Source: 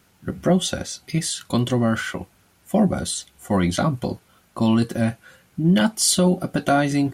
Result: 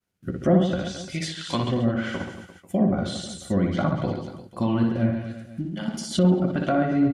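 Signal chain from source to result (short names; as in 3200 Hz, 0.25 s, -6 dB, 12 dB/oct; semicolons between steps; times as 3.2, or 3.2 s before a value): 1.12–1.63 tilt shelf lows -6.5 dB, about 690 Hz; 5.6–6.17 negative-ratio compressor -27 dBFS, ratio -1; rotary speaker horn 1.2 Hz; expander -51 dBFS; reverse bouncing-ball echo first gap 60 ms, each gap 1.25×, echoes 5; treble ducked by the level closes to 1800 Hz, closed at -17 dBFS; gain -1.5 dB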